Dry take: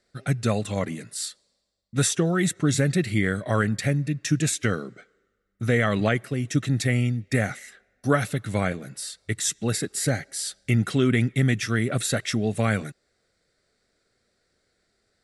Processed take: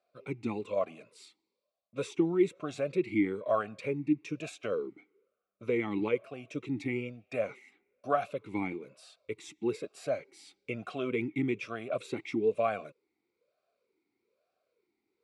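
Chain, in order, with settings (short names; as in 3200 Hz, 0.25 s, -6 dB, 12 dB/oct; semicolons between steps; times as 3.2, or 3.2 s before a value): vowel sweep a-u 1.1 Hz; gain +5 dB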